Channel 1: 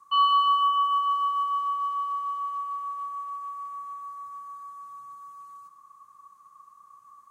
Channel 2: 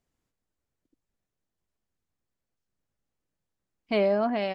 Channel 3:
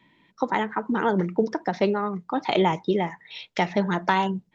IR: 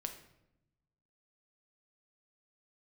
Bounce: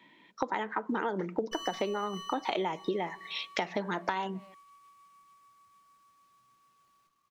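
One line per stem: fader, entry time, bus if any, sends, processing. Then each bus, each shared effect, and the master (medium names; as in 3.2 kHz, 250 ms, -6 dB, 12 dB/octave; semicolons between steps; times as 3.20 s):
-7.0 dB, 1.40 s, no send, FFT filter 350 Hz 0 dB, 680 Hz -27 dB, 2.8 kHz +4 dB; sliding maximum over 5 samples
-19.5 dB, 0.00 s, no send, compression 2:1, threshold -38 dBFS, peak gain reduction 10 dB
+1.5 dB, 0.00 s, send -20 dB, high-pass 260 Hz 12 dB/octave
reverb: on, RT60 0.85 s, pre-delay 6 ms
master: compression 10:1, threshold -28 dBFS, peak gain reduction 14.5 dB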